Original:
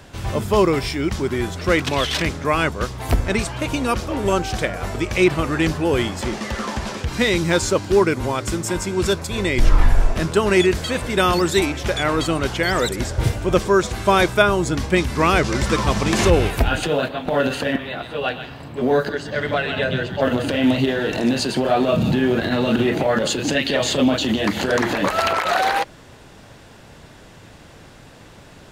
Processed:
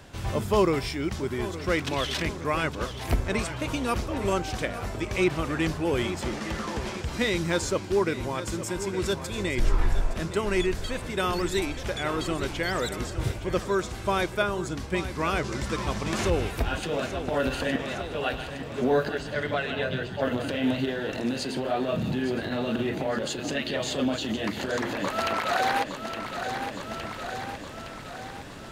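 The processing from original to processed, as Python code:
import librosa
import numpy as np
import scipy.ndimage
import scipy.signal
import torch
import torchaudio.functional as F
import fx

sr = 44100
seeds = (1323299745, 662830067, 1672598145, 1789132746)

p1 = x + fx.echo_feedback(x, sr, ms=864, feedback_pct=52, wet_db=-12.0, dry=0)
p2 = fx.rider(p1, sr, range_db=10, speed_s=2.0)
y = F.gain(torch.from_numpy(p2), -9.0).numpy()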